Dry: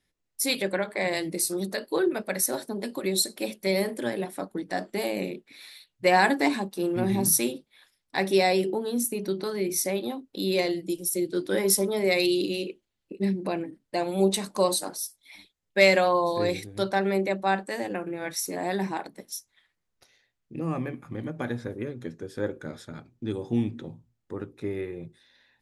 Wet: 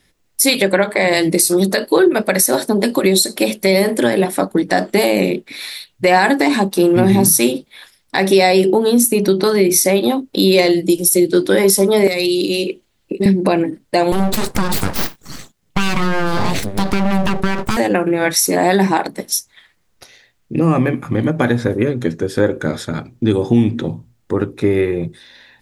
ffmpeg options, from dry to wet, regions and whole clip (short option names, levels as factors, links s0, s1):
-filter_complex "[0:a]asettb=1/sr,asplit=3[s0][s1][s2];[s0]atrim=end=12.074[s3];[s1]atrim=start=12.07:end=13.26,asetpts=PTS-STARTPTS,afade=t=in:d=0.004:c=qsin,afade=t=out:st=1.186:d=0.004:c=qsin,acrossover=split=230|4600[s4][s5][s6];[s4]acompressor=threshold=0.00447:ratio=4[s7];[s5]acompressor=threshold=0.0178:ratio=4[s8];[s6]acompressor=threshold=0.00562:ratio=4[s9];[s7][s8][s9]amix=inputs=3:normalize=0,aeval=exprs='clip(val(0),-1,0.0631)':c=same[s10];[s2]atrim=start=13.256[s11];[s3][s10]acrossfade=d=0.004:c1=hsin:c2=qsin[s12];[s12][s11]acrossfade=d=0.004:c1=qsin:c2=hsin,asettb=1/sr,asplit=3[s13][s14][s15];[s13]atrim=end=14.124[s16];[s14]atrim=start=14.12:end=17.77,asetpts=PTS-STARTPTS,afade=t=in:d=0.004:c=qsin,afade=t=out:st=3.646:d=0.004:c=qsin,acompressor=threshold=0.0355:ratio=10:attack=3.2:release=140:knee=1:detection=peak,aeval=exprs='abs(val(0))':c=same,equalizer=f=170:t=o:w=1.9:g=7.5[s17];[s15]atrim=start=17.766[s18];[s16][s17]acrossfade=d=0.004:c1=hsin:c2=qsin[s19];[s19][s18]acrossfade=d=0.004:c1=qsin:c2=hsin,acompressor=threshold=0.0398:ratio=2.5,alimiter=level_in=8.91:limit=0.891:release=50:level=0:latency=1,volume=0.891"